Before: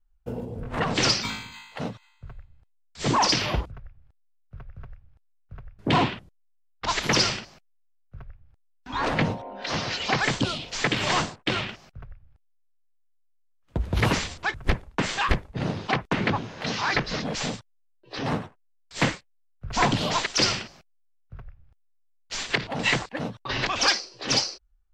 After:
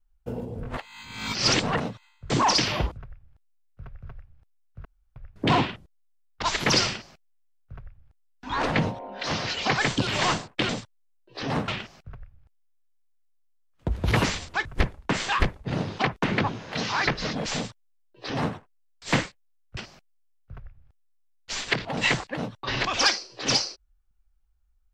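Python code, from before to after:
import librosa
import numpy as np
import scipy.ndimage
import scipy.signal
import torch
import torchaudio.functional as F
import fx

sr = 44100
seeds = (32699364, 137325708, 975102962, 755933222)

y = fx.edit(x, sr, fx.reverse_span(start_s=0.77, length_s=1.03),
    fx.cut(start_s=2.3, length_s=0.74),
    fx.insert_room_tone(at_s=5.59, length_s=0.31),
    fx.cut(start_s=10.5, length_s=0.45),
    fx.duplicate(start_s=17.45, length_s=0.99, to_s=11.57),
    fx.cut(start_s=19.66, length_s=0.93), tone=tone)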